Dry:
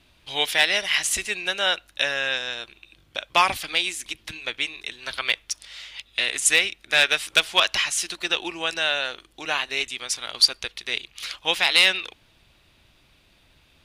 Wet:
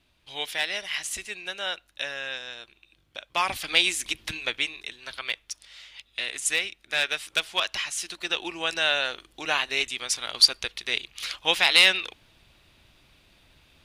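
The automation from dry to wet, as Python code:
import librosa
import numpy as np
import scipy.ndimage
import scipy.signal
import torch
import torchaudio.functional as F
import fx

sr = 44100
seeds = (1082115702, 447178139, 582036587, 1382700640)

y = fx.gain(x, sr, db=fx.line((3.34, -8.5), (3.8, 3.0), (4.33, 3.0), (5.13, -7.0), (7.84, -7.0), (8.9, 0.0)))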